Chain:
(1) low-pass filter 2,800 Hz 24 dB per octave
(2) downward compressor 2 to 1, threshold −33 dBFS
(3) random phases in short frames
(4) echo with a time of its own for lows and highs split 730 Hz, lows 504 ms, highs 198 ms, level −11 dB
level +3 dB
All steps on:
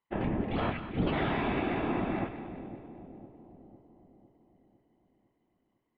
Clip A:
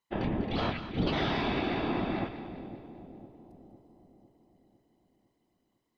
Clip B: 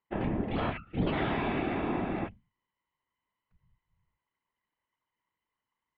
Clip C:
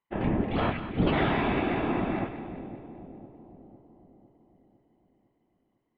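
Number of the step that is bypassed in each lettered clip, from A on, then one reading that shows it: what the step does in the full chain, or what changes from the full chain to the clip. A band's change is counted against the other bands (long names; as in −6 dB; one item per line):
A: 1, 4 kHz band +7.0 dB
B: 4, echo-to-direct ratio −9.5 dB to none audible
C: 2, average gain reduction 3.0 dB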